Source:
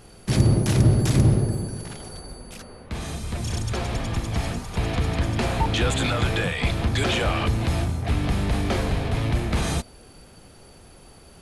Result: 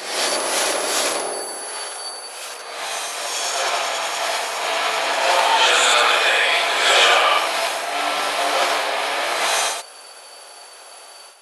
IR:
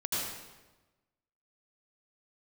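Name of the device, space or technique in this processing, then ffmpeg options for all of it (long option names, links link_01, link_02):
ghost voice: -filter_complex "[0:a]areverse[link_01];[1:a]atrim=start_sample=2205[link_02];[link_01][link_02]afir=irnorm=-1:irlink=0,areverse,highpass=frequency=600:width=0.5412,highpass=frequency=600:width=1.3066,volume=6.5dB"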